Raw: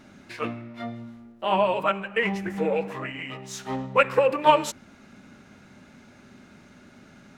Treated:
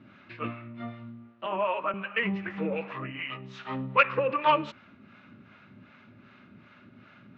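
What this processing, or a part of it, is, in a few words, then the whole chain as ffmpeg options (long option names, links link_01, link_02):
guitar amplifier with harmonic tremolo: -filter_complex "[0:a]acrossover=split=510[link_01][link_02];[link_01]aeval=exprs='val(0)*(1-0.7/2+0.7/2*cos(2*PI*2.6*n/s))':channel_layout=same[link_03];[link_02]aeval=exprs='val(0)*(1-0.7/2-0.7/2*cos(2*PI*2.6*n/s))':channel_layout=same[link_04];[link_03][link_04]amix=inputs=2:normalize=0,asoftclip=type=tanh:threshold=-11dB,highpass=92,equalizer=frequency=110:width_type=q:width=4:gain=7,equalizer=frequency=450:width_type=q:width=4:gain=-5,equalizer=frequency=780:width_type=q:width=4:gain=-6,equalizer=frequency=1200:width_type=q:width=4:gain=6,equalizer=frequency=2600:width_type=q:width=4:gain=4,lowpass=frequency=3600:width=0.5412,lowpass=frequency=3600:width=1.3066,asettb=1/sr,asplit=3[link_05][link_06][link_07];[link_05]atrim=end=1.464[link_08];[link_06]atrim=start=1.46:end=1.94,asetpts=PTS-STARTPTS,afade=type=in:duration=0.004:curve=qsin,afade=type=out:start_time=0.476:duration=0.004:curve=qsin,acrossover=split=270 2700:gain=0.141 1 0.2[link_09][link_10][link_11];[link_09][link_10][link_11]amix=inputs=3:normalize=0[link_12];[link_07]atrim=start=1.936[link_13];[link_08][link_12]acrossfade=duration=0.004:curve1=hsin:curve2=qsin[link_14];[link_14][link_13]acrossfade=duration=0.004:curve1=qsin:curve2=hsin"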